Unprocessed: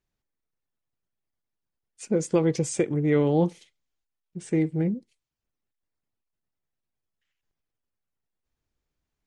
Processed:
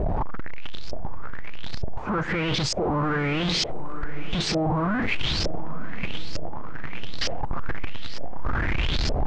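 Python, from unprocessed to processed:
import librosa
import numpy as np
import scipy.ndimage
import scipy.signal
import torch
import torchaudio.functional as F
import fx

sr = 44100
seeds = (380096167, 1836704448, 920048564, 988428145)

y = np.sign(x) * np.sqrt(np.mean(np.square(x)))
y = scipy.signal.sosfilt(scipy.signal.butter(4, 7800.0, 'lowpass', fs=sr, output='sos'), y)
y = fx.low_shelf(y, sr, hz=200.0, db=8.5)
y = fx.echo_diffused(y, sr, ms=958, feedback_pct=51, wet_db=-13)
y = fx.filter_lfo_lowpass(y, sr, shape='saw_up', hz=1.1, low_hz=570.0, high_hz=5300.0, q=5.6)
y = F.gain(torch.from_numpy(y), 1.5).numpy()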